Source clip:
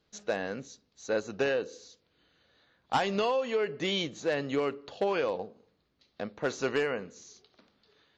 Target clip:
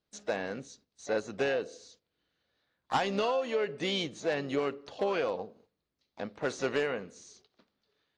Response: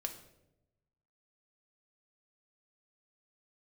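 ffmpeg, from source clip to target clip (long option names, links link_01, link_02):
-filter_complex "[0:a]asplit=2[link_01][link_02];[link_02]asetrate=58866,aresample=44100,atempo=0.749154,volume=-13dB[link_03];[link_01][link_03]amix=inputs=2:normalize=0,agate=range=-10dB:threshold=-59dB:ratio=16:detection=peak,volume=-1.5dB"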